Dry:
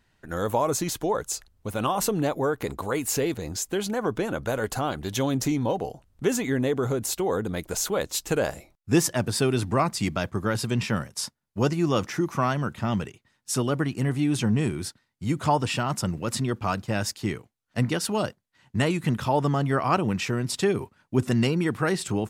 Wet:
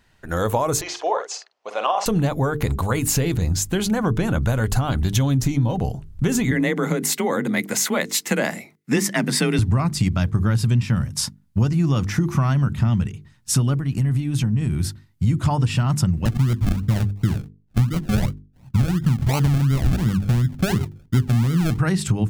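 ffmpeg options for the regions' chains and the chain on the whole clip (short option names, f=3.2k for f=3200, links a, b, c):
-filter_complex "[0:a]asettb=1/sr,asplit=3[a][b][c];[a]atrim=end=0.814[d];[b]atrim=start=0.81:end=2.06,asetpts=PTS-STARTPTS,afade=t=in:d=0.004:c=qsin,afade=t=out:st=1.246:d=0.004:c=qsin,highpass=f=460:w=0.5412,highpass=f=460:w=1.3066,equalizer=f=700:t=q:w=4:g=5,equalizer=f=1.5k:t=q:w=4:g=-4,equalizer=f=3.8k:t=q:w=4:g=-6,lowpass=f=5.4k:w=0.5412,lowpass=f=5.4k:w=1.3066,asplit=2[e][f];[f]adelay=48,volume=-8dB[g];[e][g]amix=inputs=2:normalize=0,atrim=end_sample=55125[h];[c]atrim=start=2.056[i];[d][h]acrossfade=d=0.004:c1=hsin:c2=qsin[j];[j][i]acrossfade=d=0.004:c1=qsin:c2=hsin,asettb=1/sr,asplit=3[k][l][m];[k]atrim=end=6.514[n];[l]atrim=start=6.51:end=9.59,asetpts=PTS-STARTPTS,afade=t=in:d=0.004:c=qsin,afade=t=out:st=3.076:d=0.004:c=qsin,highpass=f=170:w=0.5412,highpass=f=170:w=1.3066,equalizer=f=2k:t=o:w=0.33:g=13,afreqshift=29[o];[m]atrim=start=9.586[p];[n][o]acrossfade=d=0.004:c1=hsin:c2=qsin[q];[q][p]acrossfade=d=0.004:c1=qsin:c2=hsin,asettb=1/sr,asplit=3[r][s][t];[r]atrim=end=13.744[u];[s]atrim=start=13.74:end=15.24,asetpts=PTS-STARTPTS,afade=t=in:d=0.004:c=qsin,afade=t=out:st=1.496:d=0.004:c=qsin,equalizer=f=13k:t=o:w=0.21:g=7,acompressor=threshold=-32dB:ratio=5:attack=3.2:release=140:knee=1:detection=peak[v];[t]atrim=start=15.236[w];[u][v]acrossfade=d=0.004:c1=hsin:c2=qsin[x];[x][w]acrossfade=d=0.004:c1=qsin:c2=hsin,asettb=1/sr,asplit=3[y][z][aa];[y]atrim=end=16.254[ab];[z]atrim=start=16.25:end=21.79,asetpts=PTS-STARTPTS,afade=t=in:d=0.004:c=qsin,afade=t=out:st=5.536:d=0.004:c=qsin,lowpass=1.3k,acrusher=samples=36:mix=1:aa=0.000001:lfo=1:lforange=21.6:lforate=2.8[ac];[aa]atrim=start=21.786[ad];[ab][ac]acrossfade=d=0.004:c1=hsin:c2=qsin[ae];[ae][ad]acrossfade=d=0.004:c1=qsin:c2=hsin,bandreject=f=50:t=h:w=6,bandreject=f=100:t=h:w=6,bandreject=f=150:t=h:w=6,bandreject=f=200:t=h:w=6,bandreject=f=250:t=h:w=6,bandreject=f=300:t=h:w=6,bandreject=f=350:t=h:w=6,bandreject=f=400:t=h:w=6,bandreject=f=450:t=h:w=6,asubboost=boost=8:cutoff=150,acompressor=threshold=-23dB:ratio=6,volume=7dB"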